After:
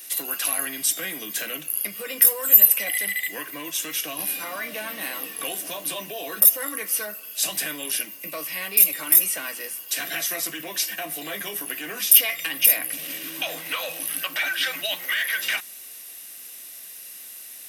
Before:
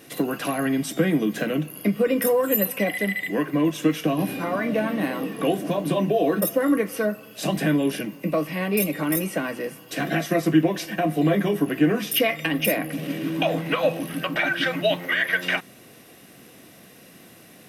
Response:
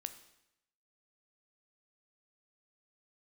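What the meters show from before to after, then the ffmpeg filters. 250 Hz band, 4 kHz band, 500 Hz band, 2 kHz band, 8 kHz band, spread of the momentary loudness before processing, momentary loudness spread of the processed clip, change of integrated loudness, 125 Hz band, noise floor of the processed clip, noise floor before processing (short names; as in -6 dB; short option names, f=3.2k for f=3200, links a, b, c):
-19.0 dB, +3.5 dB, -13.5 dB, -1.5 dB, +12.5 dB, 6 LU, 17 LU, +2.0 dB, under -20 dB, -41 dBFS, -49 dBFS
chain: -af "apsyclip=18.5dB,aderivative,volume=-7dB"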